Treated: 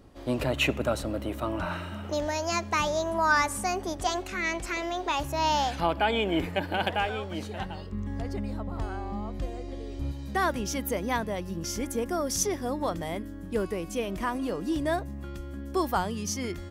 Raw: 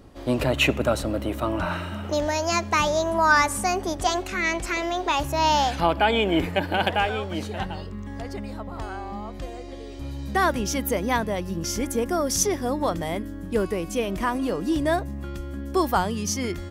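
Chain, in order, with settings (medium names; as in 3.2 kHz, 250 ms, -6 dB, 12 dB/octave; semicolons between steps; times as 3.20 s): 7.92–10.12 s: bass shelf 380 Hz +8 dB; trim -5 dB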